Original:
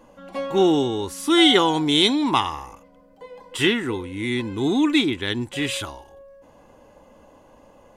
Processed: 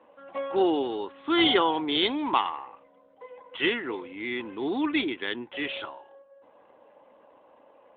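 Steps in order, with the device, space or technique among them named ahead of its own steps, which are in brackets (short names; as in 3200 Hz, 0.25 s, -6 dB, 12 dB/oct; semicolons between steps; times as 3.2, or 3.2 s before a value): telephone (BPF 390–3400 Hz; gain -2.5 dB; AMR-NB 12.2 kbps 8000 Hz)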